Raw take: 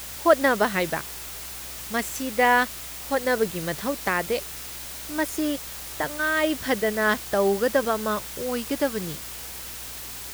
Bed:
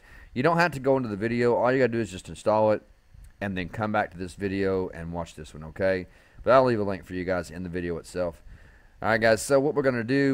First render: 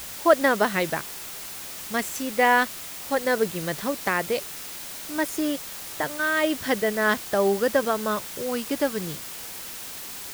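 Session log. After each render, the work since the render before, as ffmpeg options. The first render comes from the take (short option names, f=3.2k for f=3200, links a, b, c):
-af "bandreject=f=60:t=h:w=4,bandreject=f=120:t=h:w=4"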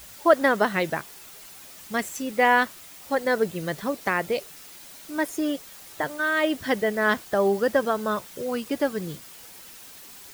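-af "afftdn=nr=9:nf=-37"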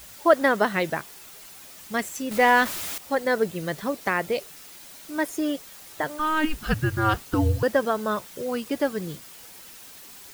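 -filter_complex "[0:a]asettb=1/sr,asplit=3[a][b][c];[a]atrim=end=2.314[d];[b]atrim=start=2.31:end=2.98,asetpts=PTS-STARTPTS,afade=t=in:d=0.004:c=qsin,afade=t=out:st=0.666:d=0.004:c=qsin,aeval=exprs='val(0)+0.5*0.0398*sgn(val(0))':c=same[e];[c]atrim=start=2.976[f];[d][e]acrossfade=d=0.004:c1=hsin:c2=qsin[g];[g][f]acrossfade=d=0.004:c1=qsin:c2=hsin,asettb=1/sr,asplit=3[h][i][j];[h]atrim=end=6.194[k];[i]atrim=start=6.19:end=7.63,asetpts=PTS-STARTPTS,afade=t=in:d=0.004:c=qsin,afade=t=out:st=1.436:d=0.004:c=qsin,afreqshift=-310[l];[j]atrim=start=7.626[m];[k][l]acrossfade=d=0.004:c1=hsin:c2=qsin[n];[n][m]acrossfade=d=0.004:c1=qsin:c2=hsin"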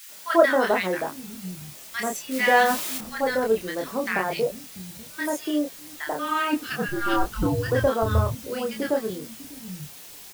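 -filter_complex "[0:a]asplit=2[a][b];[b]adelay=27,volume=-3dB[c];[a][c]amix=inputs=2:normalize=0,acrossover=split=190|1300[d][e][f];[e]adelay=90[g];[d]adelay=690[h];[h][g][f]amix=inputs=3:normalize=0"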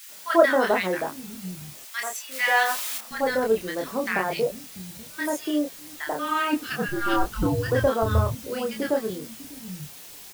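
-filter_complex "[0:a]asettb=1/sr,asplit=3[a][b][c];[a]atrim=end=1.854[d];[b]atrim=start=1.85:end=3.11,asetpts=PTS-STARTPTS,afade=t=in:d=0.004:c=qsin,afade=t=out:st=1.256:d=0.004:c=qsin,highpass=840[e];[c]atrim=start=3.106[f];[d][e]acrossfade=d=0.004:c1=hsin:c2=qsin[g];[g][f]acrossfade=d=0.004:c1=qsin:c2=hsin"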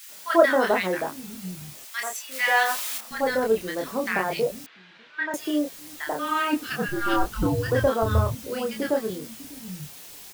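-filter_complex "[0:a]asettb=1/sr,asplit=3[a][b][c];[a]atrim=end=4.664[d];[b]atrim=start=4.66:end=5.34,asetpts=PTS-STARTPTS,afade=t=in:d=0.004:c=qsin,afade=t=out:st=0.676:d=0.004:c=qsin,highpass=500,equalizer=f=550:t=q:w=4:g=-7,equalizer=f=770:t=q:w=4:g=-5,equalizer=f=1.6k:t=q:w=4:g=7,lowpass=f=3.3k:w=0.5412,lowpass=f=3.3k:w=1.3066[e];[c]atrim=start=5.336[f];[d][e]acrossfade=d=0.004:c1=hsin:c2=qsin[g];[g][f]acrossfade=d=0.004:c1=qsin:c2=hsin"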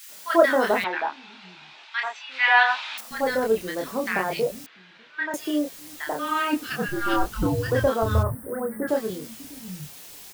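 -filter_complex "[0:a]asettb=1/sr,asplit=3[a][b][c];[a]atrim=end=0.844[d];[b]atrim=start=0.84:end=2.98,asetpts=PTS-STARTPTS,afade=t=in:d=0.004:c=qsin,afade=t=out:st=2.136:d=0.004:c=qsin,highpass=460,equalizer=f=520:t=q:w=4:g=-10,equalizer=f=880:t=q:w=4:g=10,equalizer=f=1.5k:t=q:w=4:g=6,equalizer=f=2.5k:t=q:w=4:g=7,equalizer=f=3.7k:t=q:w=4:g=5,lowpass=f=4.1k:w=0.5412,lowpass=f=4.1k:w=1.3066[e];[c]atrim=start=2.976[f];[d][e]acrossfade=d=0.004:c1=hsin:c2=qsin[g];[g][f]acrossfade=d=0.004:c1=qsin:c2=hsin,asplit=3[h][i][j];[h]afade=t=out:st=8.22:d=0.02[k];[i]asuperstop=centerf=4200:order=20:qfactor=0.64,afade=t=in:st=8.22:d=0.02,afade=t=out:st=8.87:d=0.02[l];[j]afade=t=in:st=8.87:d=0.02[m];[k][l][m]amix=inputs=3:normalize=0"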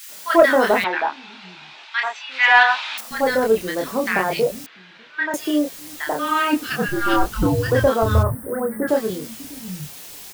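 -af "acontrast=32"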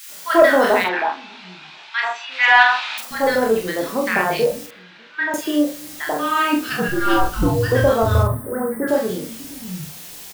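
-filter_complex "[0:a]asplit=2[a][b];[b]adelay=44,volume=-5dB[c];[a][c]amix=inputs=2:normalize=0,asplit=2[d][e];[e]adelay=122,lowpass=f=3.7k:p=1,volume=-21dB,asplit=2[f][g];[g]adelay=122,lowpass=f=3.7k:p=1,volume=0.38,asplit=2[h][i];[i]adelay=122,lowpass=f=3.7k:p=1,volume=0.38[j];[d][f][h][j]amix=inputs=4:normalize=0"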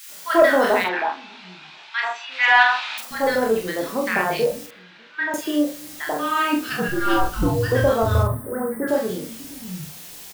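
-af "volume=-2.5dB"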